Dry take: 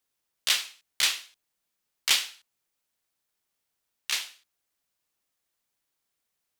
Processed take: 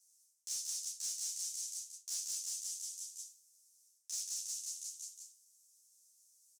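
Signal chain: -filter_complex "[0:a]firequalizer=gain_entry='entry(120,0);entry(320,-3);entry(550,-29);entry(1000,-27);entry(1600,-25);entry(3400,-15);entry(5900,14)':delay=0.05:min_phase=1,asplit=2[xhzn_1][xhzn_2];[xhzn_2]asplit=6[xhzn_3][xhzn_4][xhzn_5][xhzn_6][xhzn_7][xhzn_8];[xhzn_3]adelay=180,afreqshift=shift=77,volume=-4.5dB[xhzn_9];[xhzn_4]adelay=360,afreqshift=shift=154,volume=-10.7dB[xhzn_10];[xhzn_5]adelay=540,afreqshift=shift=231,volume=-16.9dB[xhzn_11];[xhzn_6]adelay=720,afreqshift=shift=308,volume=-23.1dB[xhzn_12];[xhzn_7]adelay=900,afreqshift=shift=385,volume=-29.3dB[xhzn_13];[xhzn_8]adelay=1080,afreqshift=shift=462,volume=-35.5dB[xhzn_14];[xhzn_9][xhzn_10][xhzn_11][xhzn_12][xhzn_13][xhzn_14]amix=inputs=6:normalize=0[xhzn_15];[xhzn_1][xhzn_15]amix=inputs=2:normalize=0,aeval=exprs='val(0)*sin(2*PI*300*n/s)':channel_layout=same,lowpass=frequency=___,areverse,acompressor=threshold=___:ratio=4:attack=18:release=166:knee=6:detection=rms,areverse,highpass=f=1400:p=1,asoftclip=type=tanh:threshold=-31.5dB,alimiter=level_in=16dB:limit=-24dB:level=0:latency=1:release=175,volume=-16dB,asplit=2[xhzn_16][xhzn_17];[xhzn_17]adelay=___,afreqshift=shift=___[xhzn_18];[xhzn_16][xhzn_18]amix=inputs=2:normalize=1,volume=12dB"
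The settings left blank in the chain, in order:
8500, -40dB, 10.4, -0.45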